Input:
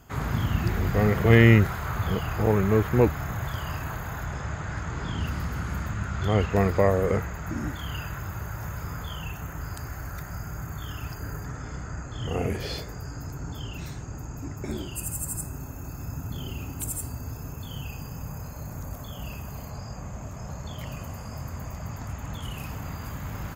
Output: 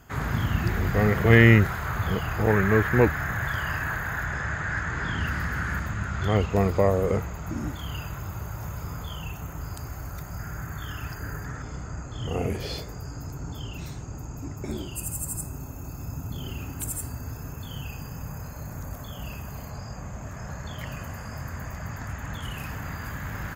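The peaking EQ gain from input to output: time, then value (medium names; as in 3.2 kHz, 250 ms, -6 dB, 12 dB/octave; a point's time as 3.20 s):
peaking EQ 1.7 kHz 0.59 oct
+5 dB
from 2.48 s +13.5 dB
from 5.79 s +5 dB
from 6.37 s -6 dB
from 10.39 s +5.5 dB
from 11.62 s -4 dB
from 16.44 s +4 dB
from 20.26 s +10 dB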